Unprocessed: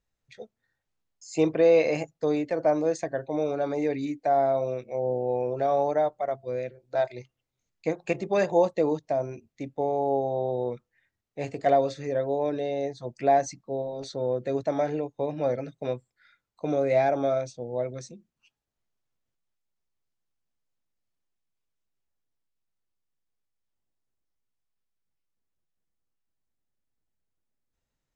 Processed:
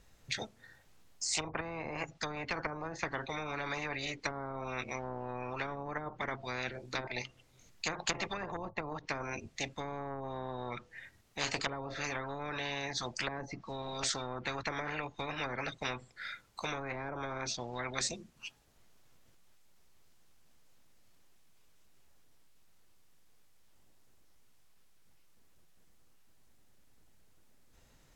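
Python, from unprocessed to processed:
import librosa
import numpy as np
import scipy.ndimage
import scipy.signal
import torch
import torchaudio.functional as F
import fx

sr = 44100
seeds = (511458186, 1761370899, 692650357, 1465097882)

y = fx.dynamic_eq(x, sr, hz=5900.0, q=1.6, threshold_db=-56.0, ratio=4.0, max_db=6)
y = fx.env_lowpass_down(y, sr, base_hz=360.0, full_db=-19.5)
y = fx.spectral_comp(y, sr, ratio=10.0)
y = y * librosa.db_to_amplitude(-3.5)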